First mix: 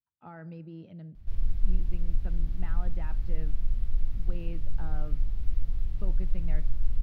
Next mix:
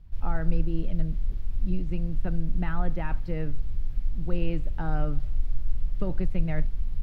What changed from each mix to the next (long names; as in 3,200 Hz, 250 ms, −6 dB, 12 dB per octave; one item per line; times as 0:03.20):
speech +11.0 dB
background: entry −1.15 s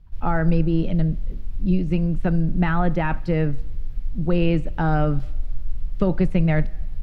speech +11.5 dB
background: send on